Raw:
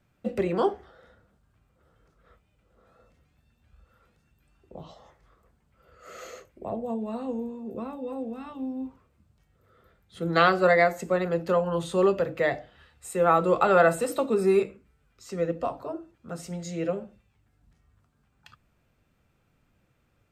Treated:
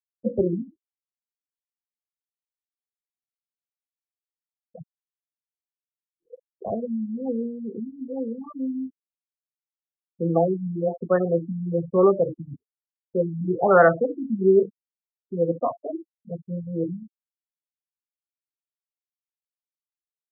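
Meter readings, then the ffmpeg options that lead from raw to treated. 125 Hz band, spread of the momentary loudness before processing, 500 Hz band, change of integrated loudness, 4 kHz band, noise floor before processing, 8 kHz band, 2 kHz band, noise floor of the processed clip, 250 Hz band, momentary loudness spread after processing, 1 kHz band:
+4.5 dB, 19 LU, +2.0 dB, +2.0 dB, below −40 dB, −69 dBFS, below −35 dB, −3.0 dB, below −85 dBFS, +4.0 dB, 16 LU, −1.5 dB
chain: -af "acontrast=22,afftfilt=real='re*gte(hypot(re,im),0.1)':imag='im*gte(hypot(re,im),0.1)':win_size=1024:overlap=0.75,afftfilt=real='re*lt(b*sr/1024,280*pow(2000/280,0.5+0.5*sin(2*PI*1.1*pts/sr)))':imag='im*lt(b*sr/1024,280*pow(2000/280,0.5+0.5*sin(2*PI*1.1*pts/sr)))':win_size=1024:overlap=0.75"

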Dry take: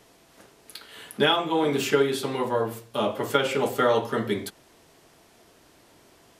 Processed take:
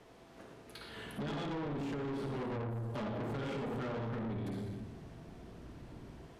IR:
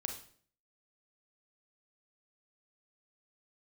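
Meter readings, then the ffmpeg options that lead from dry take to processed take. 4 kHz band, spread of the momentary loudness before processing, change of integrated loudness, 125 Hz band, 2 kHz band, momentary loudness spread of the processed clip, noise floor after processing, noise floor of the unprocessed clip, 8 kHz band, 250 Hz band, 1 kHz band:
−21.0 dB, 19 LU, −15.0 dB, −2.5 dB, −16.5 dB, 14 LU, −57 dBFS, −57 dBFS, −22.0 dB, −9.0 dB, −16.5 dB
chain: -filter_complex "[0:a]lowpass=frequency=1700:poles=1[link_01];[1:a]atrim=start_sample=2205,asetrate=26901,aresample=44100[link_02];[link_01][link_02]afir=irnorm=-1:irlink=0,acrossover=split=220[link_03][link_04];[link_03]dynaudnorm=framelen=620:gausssize=3:maxgain=14dB[link_05];[link_04]alimiter=limit=-15dB:level=0:latency=1:release=126[link_06];[link_05][link_06]amix=inputs=2:normalize=0,acompressor=threshold=-25dB:ratio=6,asoftclip=type=tanh:threshold=-34dB,volume=-2dB"

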